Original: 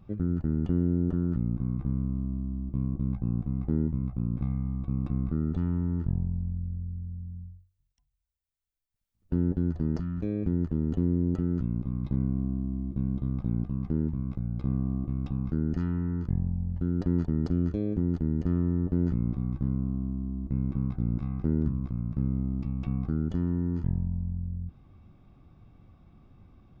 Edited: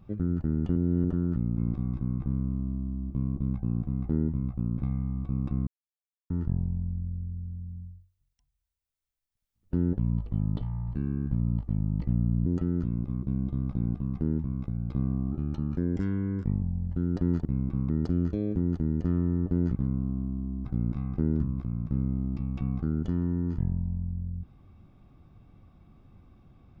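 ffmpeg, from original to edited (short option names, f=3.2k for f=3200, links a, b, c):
-filter_complex "[0:a]asplit=16[a][b][c][d][e][f][g][h][i][j][k][l][m][n][o][p];[a]atrim=end=0.762[q];[b]atrim=start=0.758:end=1.042,asetpts=PTS-STARTPTS,areverse[r];[c]atrim=start=1.038:end=1.582[s];[d]atrim=start=19.168:end=19.582[t];[e]atrim=start=1.578:end=5.26,asetpts=PTS-STARTPTS,afade=t=out:st=3.678:d=0.004:c=hsin[u];[f]atrim=start=5.26:end=5.89,asetpts=PTS-STARTPTS,volume=0[v];[g]atrim=start=5.89:end=9.574,asetpts=PTS-STARTPTS,afade=t=in:d=0.004:c=hsin[w];[h]atrim=start=9.57:end=11.23,asetpts=PTS-STARTPTS,asetrate=29547,aresample=44100[x];[i]atrim=start=11.226:end=12.002[y];[j]atrim=start=12.918:end=15.014[z];[k]atrim=start=15.01:end=16.47,asetpts=PTS-STARTPTS,asetrate=49392,aresample=44100,atrim=end_sample=57487,asetpts=PTS-STARTPTS[aa];[l]atrim=start=16.466:end=17.302[ab];[m]atrim=start=20.468:end=20.912[ac];[n]atrim=start=17.298:end=19.172[ad];[o]atrim=start=19.578:end=20.472[ae];[p]atrim=start=20.908[af];[q][r]acrossfade=d=0.004:c1=hsin:c2=hsin[ag];[ag][s]acrossfade=d=0.004:c1=hsin:c2=hsin[ah];[ah][t]acrossfade=d=0.004:c1=hsin:c2=hsin[ai];[u][v][w]concat=n=3:v=0:a=1[aj];[ai][aj]acrossfade=d=0.004:c1=hsin:c2=hsin[ak];[ak][x]acrossfade=d=0.004:c1=hsin:c2=hsin[al];[al][y]acrossfade=d=0.004:c1=hsin:c2=hsin[am];[am][z]acrossfade=d=0.004:c1=hsin:c2=hsin[an];[an][aa]acrossfade=d=0.004:c1=hsin:c2=hsin[ao];[ao][ab]acrossfade=d=0.004:c1=hsin:c2=hsin[ap];[ap][ac]acrossfade=d=0.004:c1=hsin:c2=hsin[aq];[aq][ad]acrossfade=d=0.004:c1=hsin:c2=hsin[ar];[ar][ae]acrossfade=d=0.004:c1=hsin:c2=hsin[as];[as][af]acrossfade=d=0.004:c1=hsin:c2=hsin"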